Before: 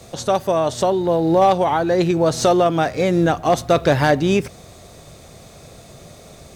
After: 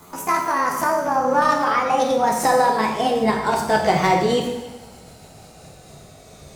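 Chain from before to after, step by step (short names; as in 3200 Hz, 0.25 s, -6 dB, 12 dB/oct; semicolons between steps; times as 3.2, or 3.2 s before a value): gliding pitch shift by +10 st ending unshifted; two-slope reverb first 0.95 s, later 2.4 s, DRR 0.5 dB; gain -3.5 dB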